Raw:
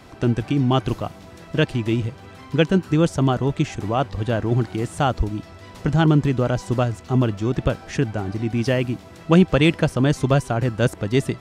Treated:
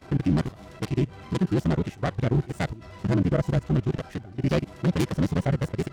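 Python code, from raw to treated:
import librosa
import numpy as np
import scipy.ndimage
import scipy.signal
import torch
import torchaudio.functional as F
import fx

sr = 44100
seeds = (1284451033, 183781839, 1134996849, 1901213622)

y = fx.self_delay(x, sr, depth_ms=0.48)
y = fx.level_steps(y, sr, step_db=23)
y = fx.hpss(y, sr, part='percussive', gain_db=-10)
y = fx.stretch_grains(y, sr, factor=0.52, grain_ms=22.0)
y = F.gain(torch.from_numpy(y), 5.0).numpy()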